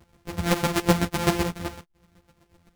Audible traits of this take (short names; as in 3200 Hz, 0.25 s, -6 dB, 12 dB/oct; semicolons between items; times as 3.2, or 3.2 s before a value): a buzz of ramps at a fixed pitch in blocks of 256 samples; chopped level 7.9 Hz, depth 65%, duty 20%; a shimmering, thickened sound